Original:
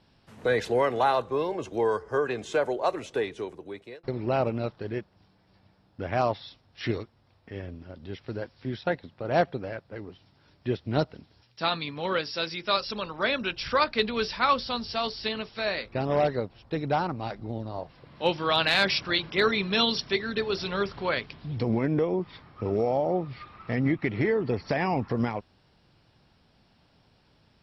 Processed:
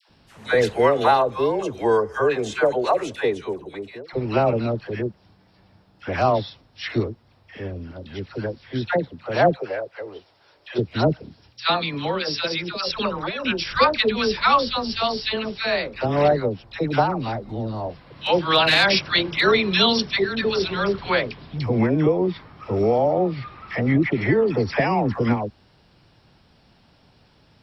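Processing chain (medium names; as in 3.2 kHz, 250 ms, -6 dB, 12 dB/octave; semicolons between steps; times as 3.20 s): 9.47–10.70 s: resonant low shelf 320 Hz -13.5 dB, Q 1.5; 11.84–13.45 s: compressor with a negative ratio -30 dBFS, ratio -0.5; phase dispersion lows, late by 95 ms, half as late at 880 Hz; trim +6.5 dB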